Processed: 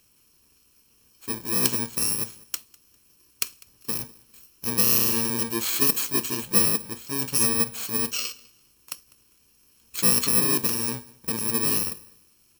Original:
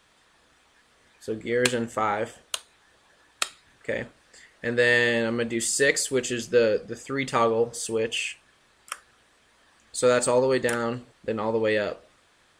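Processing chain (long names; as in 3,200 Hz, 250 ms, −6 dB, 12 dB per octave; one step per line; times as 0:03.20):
samples in bit-reversed order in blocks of 64 samples
on a send: repeating echo 200 ms, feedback 27%, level −24 dB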